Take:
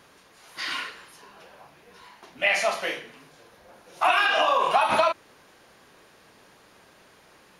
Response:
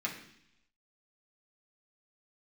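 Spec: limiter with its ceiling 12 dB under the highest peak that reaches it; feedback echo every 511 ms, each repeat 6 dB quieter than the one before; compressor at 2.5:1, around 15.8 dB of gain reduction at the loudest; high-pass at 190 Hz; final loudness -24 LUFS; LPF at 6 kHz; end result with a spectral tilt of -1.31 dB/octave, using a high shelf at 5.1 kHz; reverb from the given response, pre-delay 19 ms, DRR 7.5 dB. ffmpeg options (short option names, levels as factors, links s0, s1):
-filter_complex "[0:a]highpass=190,lowpass=6000,highshelf=f=5100:g=8,acompressor=threshold=0.00891:ratio=2.5,alimiter=level_in=3.35:limit=0.0631:level=0:latency=1,volume=0.299,aecho=1:1:511|1022|1533|2044|2555|3066:0.501|0.251|0.125|0.0626|0.0313|0.0157,asplit=2[s0][s1];[1:a]atrim=start_sample=2205,adelay=19[s2];[s1][s2]afir=irnorm=-1:irlink=0,volume=0.266[s3];[s0][s3]amix=inputs=2:normalize=0,volume=10.6"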